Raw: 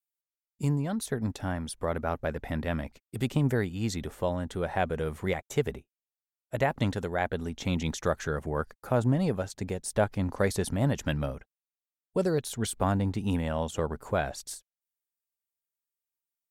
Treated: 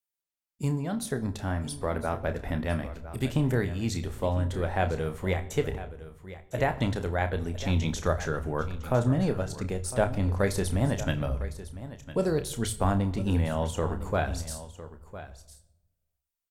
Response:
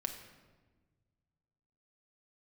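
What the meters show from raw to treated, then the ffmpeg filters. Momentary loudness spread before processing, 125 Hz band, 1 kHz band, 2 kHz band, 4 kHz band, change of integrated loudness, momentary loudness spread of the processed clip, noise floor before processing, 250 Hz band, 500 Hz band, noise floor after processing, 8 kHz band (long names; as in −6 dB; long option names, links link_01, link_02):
7 LU, +2.5 dB, +1.0 dB, +0.5 dB, +1.0 dB, +1.0 dB, 12 LU, below −85 dBFS, +0.5 dB, +0.5 dB, below −85 dBFS, +1.0 dB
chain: -filter_complex "[0:a]aecho=1:1:1006:0.188,asplit=2[link_01][link_02];[link_02]asubboost=boost=10.5:cutoff=69[link_03];[1:a]atrim=start_sample=2205,asetrate=79380,aresample=44100,adelay=30[link_04];[link_03][link_04]afir=irnorm=-1:irlink=0,volume=-3dB[link_05];[link_01][link_05]amix=inputs=2:normalize=0"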